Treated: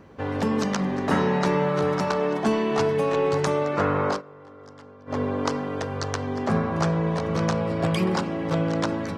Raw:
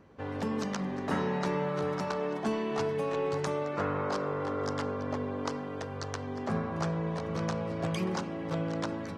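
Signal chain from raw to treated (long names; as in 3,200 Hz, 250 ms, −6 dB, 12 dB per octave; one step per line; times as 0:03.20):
0:04.10–0:05.18: duck −21.5 dB, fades 0.12 s
0:07.56–0:08.26: notch filter 6,200 Hz, Q 7.2
level +8.5 dB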